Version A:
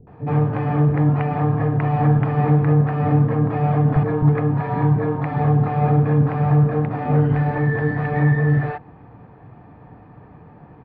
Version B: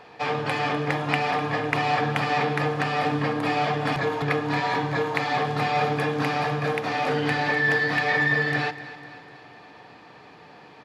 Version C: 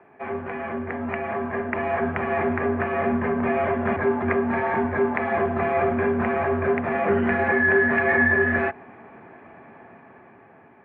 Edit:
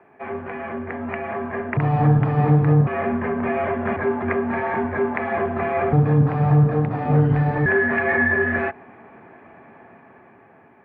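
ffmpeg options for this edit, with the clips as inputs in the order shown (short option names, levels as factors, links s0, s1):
-filter_complex "[0:a]asplit=2[s0][s1];[2:a]asplit=3[s2][s3][s4];[s2]atrim=end=1.772[s5];[s0]atrim=start=1.768:end=2.872[s6];[s3]atrim=start=2.868:end=5.932[s7];[s1]atrim=start=5.928:end=7.662[s8];[s4]atrim=start=7.658[s9];[s5][s6]acrossfade=d=0.004:c1=hsin:c2=hsin[s10];[s10][s7]acrossfade=d=0.004:c1=hsin:c2=hsin[s11];[s11][s8]acrossfade=d=0.004:c1=hsin:c2=hsin[s12];[s12][s9]acrossfade=d=0.004:c1=hsin:c2=hsin"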